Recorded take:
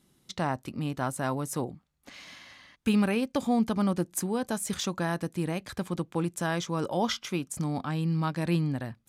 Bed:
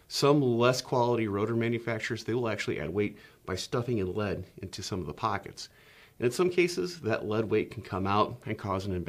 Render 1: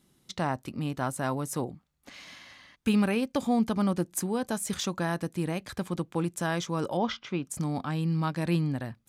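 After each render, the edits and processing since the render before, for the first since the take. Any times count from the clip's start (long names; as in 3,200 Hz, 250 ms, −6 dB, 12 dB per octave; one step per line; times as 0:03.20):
0:06.97–0:07.45: high-frequency loss of the air 190 metres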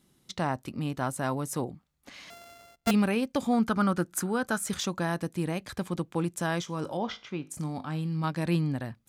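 0:02.30–0:02.91: samples sorted by size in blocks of 64 samples
0:03.53–0:04.69: parametric band 1,400 Hz +14.5 dB 0.39 octaves
0:06.62–0:08.24: tuned comb filter 52 Hz, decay 0.35 s, mix 50%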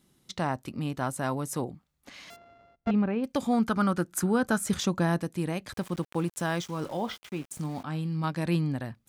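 0:02.36–0:03.24: head-to-tape spacing loss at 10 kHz 42 dB
0:04.23–0:05.21: low-shelf EQ 470 Hz +6.5 dB
0:05.73–0:07.84: centre clipping without the shift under −45 dBFS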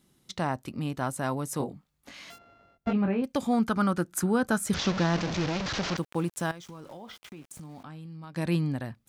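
0:01.58–0:03.22: double-tracking delay 21 ms −5 dB
0:04.74–0:05.97: linear delta modulator 32 kbit/s, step −25.5 dBFS
0:06.51–0:08.36: downward compressor 10 to 1, threshold −40 dBFS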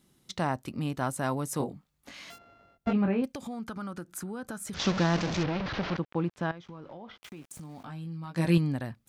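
0:03.25–0:04.80: downward compressor 4 to 1, threshold −36 dBFS
0:05.43–0:07.23: high-frequency loss of the air 250 metres
0:07.82–0:08.58: double-tracking delay 18 ms −2.5 dB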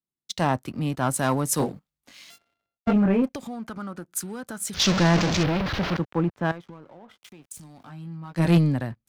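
leveller curve on the samples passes 2
multiband upward and downward expander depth 70%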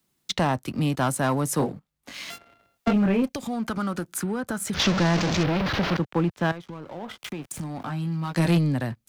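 multiband upward and downward compressor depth 70%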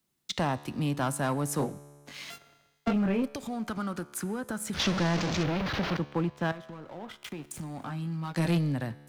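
tuned comb filter 72 Hz, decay 1.7 s, harmonics all, mix 50%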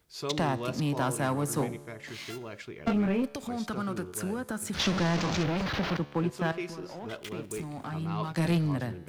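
mix in bed −11 dB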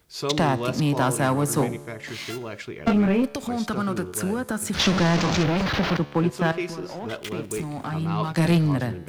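level +7 dB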